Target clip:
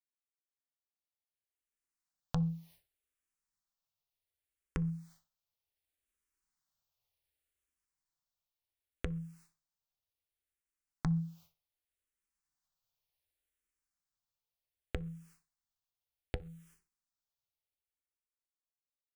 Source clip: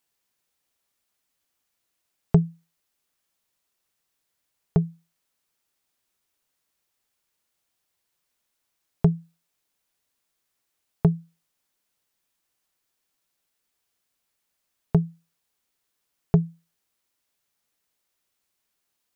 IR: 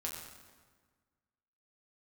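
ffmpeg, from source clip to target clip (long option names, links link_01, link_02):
-filter_complex "[0:a]asoftclip=type=tanh:threshold=-21dB,asubboost=boost=4:cutoff=110,dynaudnorm=framelen=130:gausssize=21:maxgain=11.5dB,agate=range=-33dB:threshold=-51dB:ratio=3:detection=peak,alimiter=limit=-18.5dB:level=0:latency=1:release=97,asplit=2[link_01][link_02];[link_02]adelay=61,lowpass=frequency=1300:poles=1,volume=-12dB,asplit=2[link_03][link_04];[link_04]adelay=61,lowpass=frequency=1300:poles=1,volume=0.18[link_05];[link_01][link_03][link_05]amix=inputs=3:normalize=0,acompressor=threshold=-37dB:ratio=4,asplit=2[link_06][link_07];[1:a]atrim=start_sample=2205,atrim=end_sample=6174[link_08];[link_07][link_08]afir=irnorm=-1:irlink=0,volume=-20.5dB[link_09];[link_06][link_09]amix=inputs=2:normalize=0,asplit=2[link_10][link_11];[link_11]afreqshift=-0.67[link_12];[link_10][link_12]amix=inputs=2:normalize=1,volume=5.5dB"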